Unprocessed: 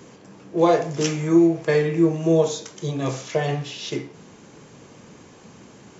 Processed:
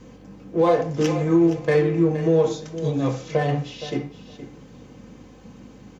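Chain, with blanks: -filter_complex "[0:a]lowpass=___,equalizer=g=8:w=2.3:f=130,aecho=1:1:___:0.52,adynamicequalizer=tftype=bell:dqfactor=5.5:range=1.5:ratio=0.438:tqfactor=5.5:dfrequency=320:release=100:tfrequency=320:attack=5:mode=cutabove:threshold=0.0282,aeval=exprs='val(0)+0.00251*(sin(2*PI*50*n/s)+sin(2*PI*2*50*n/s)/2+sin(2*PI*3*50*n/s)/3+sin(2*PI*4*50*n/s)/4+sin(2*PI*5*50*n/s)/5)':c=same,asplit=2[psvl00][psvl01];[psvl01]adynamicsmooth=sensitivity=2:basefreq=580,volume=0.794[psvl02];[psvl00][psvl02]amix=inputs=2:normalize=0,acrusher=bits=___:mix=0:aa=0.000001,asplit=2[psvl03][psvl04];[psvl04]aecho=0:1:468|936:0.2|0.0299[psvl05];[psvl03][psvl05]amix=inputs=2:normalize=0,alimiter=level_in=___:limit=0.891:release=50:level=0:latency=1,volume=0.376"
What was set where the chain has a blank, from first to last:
5.5k, 3.9, 11, 1.58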